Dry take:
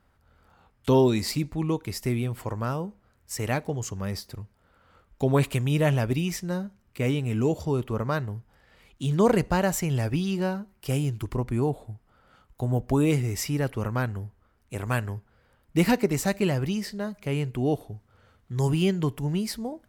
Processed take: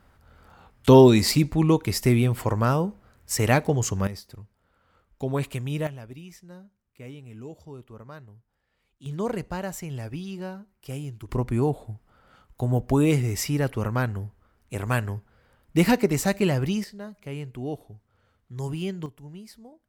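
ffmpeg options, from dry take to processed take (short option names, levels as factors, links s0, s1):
-af "asetnsamples=n=441:p=0,asendcmd='4.07 volume volume -5dB;5.87 volume volume -16dB;9.06 volume volume -8dB;11.29 volume volume 2dB;16.84 volume volume -7dB;19.06 volume volume -15dB',volume=2.24"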